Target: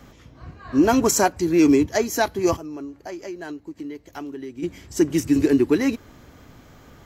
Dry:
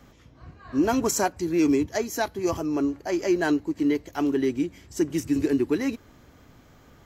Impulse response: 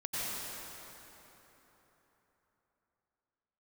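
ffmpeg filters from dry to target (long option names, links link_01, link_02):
-filter_complex "[0:a]asplit=3[link_01][link_02][link_03];[link_01]afade=type=out:start_time=2.55:duration=0.02[link_04];[link_02]acompressor=threshold=-39dB:ratio=5,afade=type=in:start_time=2.55:duration=0.02,afade=type=out:start_time=4.62:duration=0.02[link_05];[link_03]afade=type=in:start_time=4.62:duration=0.02[link_06];[link_04][link_05][link_06]amix=inputs=3:normalize=0,volume=5.5dB"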